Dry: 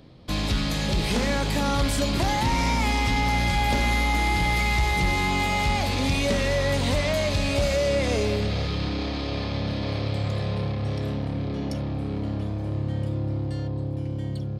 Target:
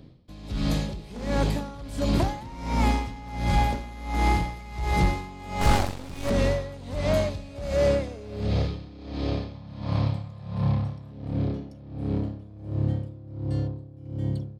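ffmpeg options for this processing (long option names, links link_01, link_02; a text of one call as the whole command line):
ffmpeg -i in.wav -filter_complex "[0:a]asettb=1/sr,asplit=3[link_01][link_02][link_03];[link_01]atrim=end=5.614[link_04];[link_02]atrim=start=5.61:end=6.3,asetpts=PTS-STARTPTS,afade=type=in:duration=0.004:curve=qsin,afade=type=out:start_time=0.686:duration=0.004:curve=qsin,aeval=exprs='0.188*(cos(1*acos(clip(val(0)/0.188,-1,1)))-cos(1*PI/2))+0.0376*(cos(6*acos(clip(val(0)/0.188,-1,1)))-cos(6*PI/2))+0.0473*(cos(7*acos(clip(val(0)/0.188,-1,1)))-cos(7*PI/2))':channel_layout=same[link_05];[link_03]atrim=start=6.296[link_06];[link_04][link_05]acrossfade=duration=0.004:curve1=hsin:curve2=qsin[link_07];[link_07][link_06]acrossfade=duration=0.004:curve1=qsin:curve2=hsin,asplit=2[link_08][link_09];[link_09]adynamicsmooth=sensitivity=1:basefreq=500,volume=2.5dB[link_10];[link_08][link_10]amix=inputs=2:normalize=0,asettb=1/sr,asplit=3[link_11][link_12][link_13];[link_11]atrim=end=9.554[link_14];[link_12]atrim=start=9.55:end=11.12,asetpts=PTS-STARTPTS,afade=type=in:duration=0.004:curve=qsin,afade=type=out:start_time=1.566:duration=0.004:curve=qsin,equalizer=frequency=160:width_type=o:width=0.67:gain=6,equalizer=frequency=400:width_type=o:width=0.67:gain=-11,equalizer=frequency=1000:width_type=o:width=0.67:gain=8[link_15];[link_13]atrim=start=11.116[link_16];[link_14][link_15]acrossfade=duration=0.004:curve1=hsin:curve2=qsin[link_17];[link_17][link_16]acrossfade=duration=0.004:curve1=qsin:curve2=hsin,aeval=exprs='val(0)*pow(10,-20*(0.5-0.5*cos(2*PI*1.4*n/s))/20)':channel_layout=same,volume=-3.5dB" out.wav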